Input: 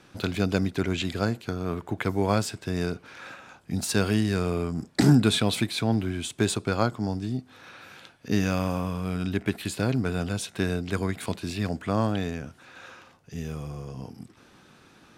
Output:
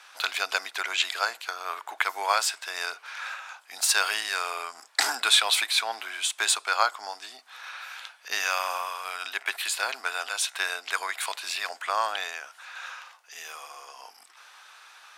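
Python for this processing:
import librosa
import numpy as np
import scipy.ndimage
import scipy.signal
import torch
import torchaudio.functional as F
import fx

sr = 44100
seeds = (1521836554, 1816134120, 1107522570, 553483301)

y = scipy.signal.sosfilt(scipy.signal.butter(4, 850.0, 'highpass', fs=sr, output='sos'), x)
y = y * 10.0 ** (7.5 / 20.0)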